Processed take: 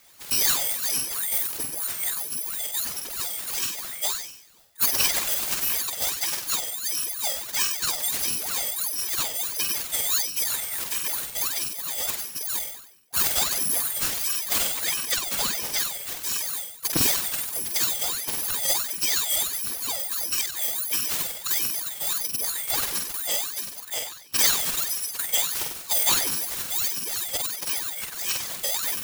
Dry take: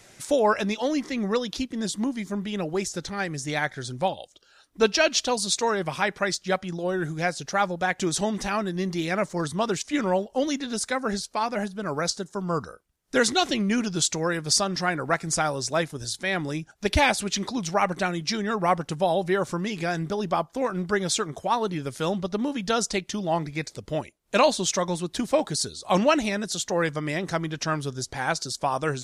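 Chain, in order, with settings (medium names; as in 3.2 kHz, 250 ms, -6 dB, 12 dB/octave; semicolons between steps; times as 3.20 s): bit-reversed sample order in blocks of 256 samples; flutter echo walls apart 8.2 m, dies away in 0.72 s; ring modulator with a swept carrier 1.2 kHz, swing 85%, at 1.5 Hz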